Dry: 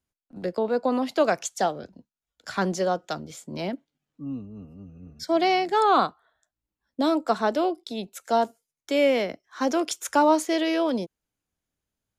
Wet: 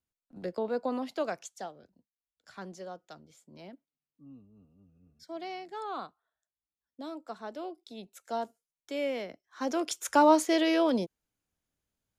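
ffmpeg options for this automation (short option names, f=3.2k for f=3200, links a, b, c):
-af "volume=9.5dB,afade=t=out:st=0.74:d=0.98:silence=0.281838,afade=t=in:st=7.41:d=0.69:silence=0.473151,afade=t=in:st=9.45:d=0.82:silence=0.316228"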